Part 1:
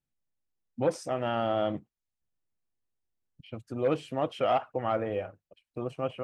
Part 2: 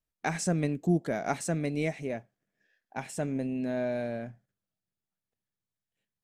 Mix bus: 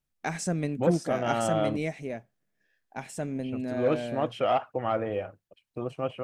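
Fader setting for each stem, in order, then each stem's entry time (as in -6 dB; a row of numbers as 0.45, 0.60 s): +1.0, -1.0 dB; 0.00, 0.00 s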